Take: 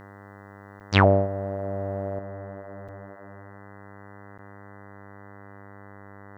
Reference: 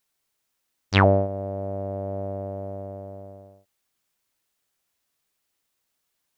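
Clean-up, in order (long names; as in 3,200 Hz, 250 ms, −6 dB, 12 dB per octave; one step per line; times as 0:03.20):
hum removal 99.9 Hz, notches 20
repair the gap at 0:00.80/0:02.88/0:04.38, 6.8 ms
level correction +7 dB, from 0:02.19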